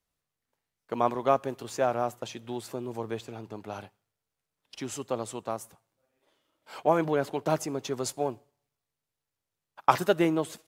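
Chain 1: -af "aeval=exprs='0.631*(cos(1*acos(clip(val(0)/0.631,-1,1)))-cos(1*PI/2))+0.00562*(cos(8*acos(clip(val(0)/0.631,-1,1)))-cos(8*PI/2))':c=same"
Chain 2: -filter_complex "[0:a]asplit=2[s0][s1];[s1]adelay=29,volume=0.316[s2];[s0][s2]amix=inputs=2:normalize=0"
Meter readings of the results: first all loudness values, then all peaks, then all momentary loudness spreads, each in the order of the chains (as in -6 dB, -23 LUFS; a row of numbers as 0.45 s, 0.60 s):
-30.0 LUFS, -29.5 LUFS; -4.5 dBFS, -4.5 dBFS; 16 LU, 16 LU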